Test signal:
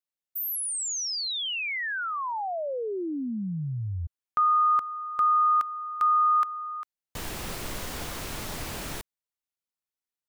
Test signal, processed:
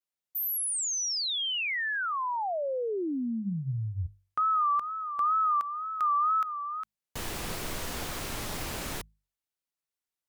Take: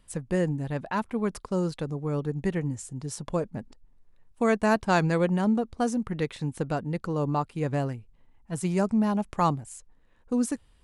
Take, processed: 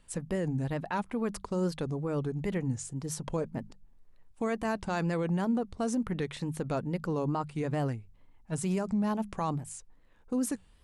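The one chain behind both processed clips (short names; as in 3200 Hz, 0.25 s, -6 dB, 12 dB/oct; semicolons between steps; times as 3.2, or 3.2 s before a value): limiter -22.5 dBFS; notches 50/100/150/200 Hz; wow and flutter 2.1 Hz 100 cents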